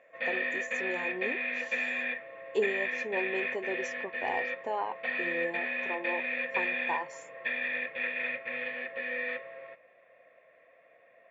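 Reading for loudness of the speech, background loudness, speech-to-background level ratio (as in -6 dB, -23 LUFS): -37.5 LUFS, -32.5 LUFS, -5.0 dB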